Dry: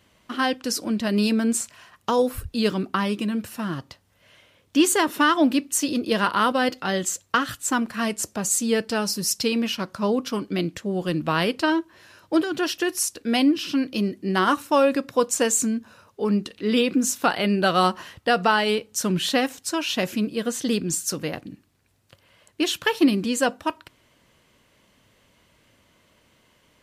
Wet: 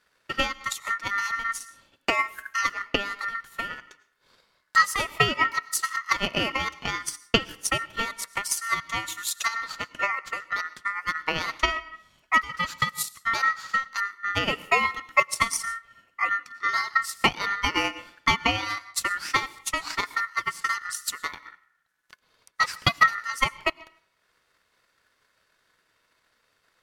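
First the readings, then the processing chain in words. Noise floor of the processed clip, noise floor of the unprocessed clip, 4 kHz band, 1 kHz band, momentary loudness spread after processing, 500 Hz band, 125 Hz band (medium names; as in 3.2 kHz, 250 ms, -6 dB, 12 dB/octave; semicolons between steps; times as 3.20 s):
-71 dBFS, -62 dBFS, -1.5 dB, -1.0 dB, 9 LU, -11.5 dB, -6.5 dB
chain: algorithmic reverb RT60 0.62 s, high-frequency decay 0.55×, pre-delay 65 ms, DRR 11.5 dB; transient shaper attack +11 dB, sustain -4 dB; ring modulator 1.6 kHz; trim -6 dB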